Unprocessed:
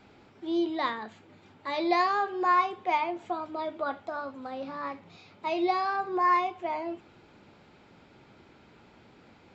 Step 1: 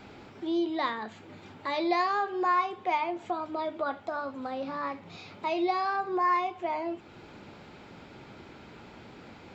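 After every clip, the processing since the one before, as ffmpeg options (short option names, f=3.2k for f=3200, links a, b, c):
-af "acompressor=threshold=-48dB:ratio=1.5,volume=7.5dB"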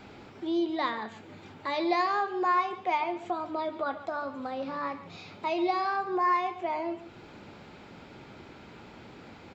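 -af "aecho=1:1:142:0.178"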